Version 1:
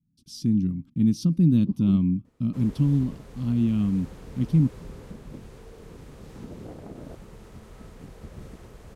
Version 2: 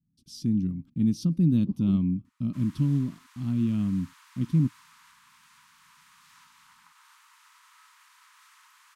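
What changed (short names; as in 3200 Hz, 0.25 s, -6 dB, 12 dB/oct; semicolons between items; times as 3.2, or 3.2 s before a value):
speech -3.0 dB; background: add steep high-pass 940 Hz 96 dB/oct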